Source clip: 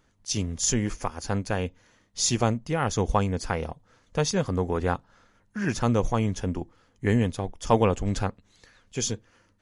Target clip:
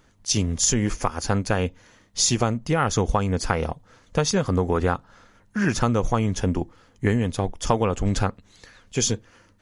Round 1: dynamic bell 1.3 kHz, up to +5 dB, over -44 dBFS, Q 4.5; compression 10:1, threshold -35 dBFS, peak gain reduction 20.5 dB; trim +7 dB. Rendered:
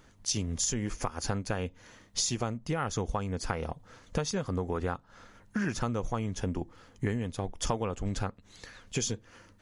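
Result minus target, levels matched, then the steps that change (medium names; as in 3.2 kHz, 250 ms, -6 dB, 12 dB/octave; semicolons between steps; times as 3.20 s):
compression: peak gain reduction +10.5 dB
change: compression 10:1, threshold -23.5 dBFS, peak gain reduction 10 dB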